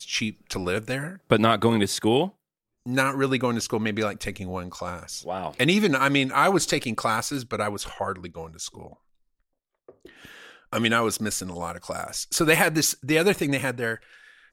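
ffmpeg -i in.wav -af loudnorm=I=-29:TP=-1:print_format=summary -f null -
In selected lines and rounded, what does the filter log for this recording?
Input Integrated:    -24.2 LUFS
Input True Peak:      -4.7 dBTP
Input LRA:             7.1 LU
Input Threshold:     -35.0 LUFS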